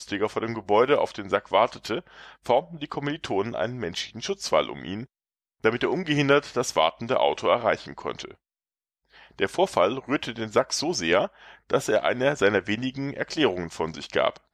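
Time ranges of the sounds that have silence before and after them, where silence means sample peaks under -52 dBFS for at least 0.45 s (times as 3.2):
5.64–8.35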